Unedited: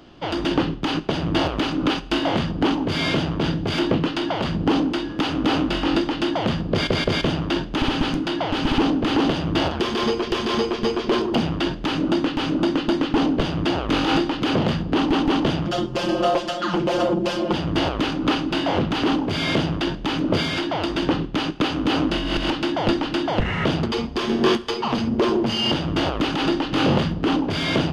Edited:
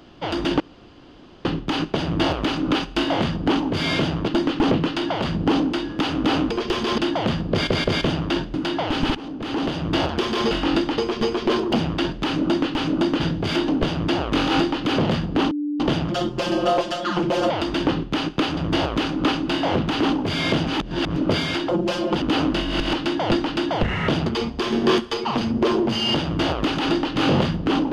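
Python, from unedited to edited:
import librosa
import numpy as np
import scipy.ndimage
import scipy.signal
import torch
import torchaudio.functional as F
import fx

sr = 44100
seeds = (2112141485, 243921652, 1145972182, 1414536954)

y = fx.edit(x, sr, fx.insert_room_tone(at_s=0.6, length_s=0.85),
    fx.swap(start_s=3.43, length_s=0.48, other_s=12.82, other_length_s=0.43),
    fx.swap(start_s=5.71, length_s=0.47, other_s=10.13, other_length_s=0.47),
    fx.cut(start_s=7.74, length_s=0.42),
    fx.fade_in_from(start_s=8.77, length_s=0.85, floor_db=-20.0),
    fx.bleep(start_s=15.08, length_s=0.29, hz=294.0, db=-22.0),
    fx.swap(start_s=17.07, length_s=0.53, other_s=20.72, other_length_s=1.07),
    fx.reverse_span(start_s=19.7, length_s=0.49), tone=tone)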